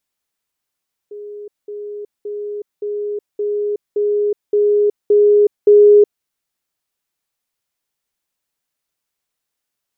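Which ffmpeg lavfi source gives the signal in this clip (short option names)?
-f lavfi -i "aevalsrc='pow(10,(-28.5+3*floor(t/0.57))/20)*sin(2*PI*414*t)*clip(min(mod(t,0.57),0.37-mod(t,0.57))/0.005,0,1)':d=5.13:s=44100"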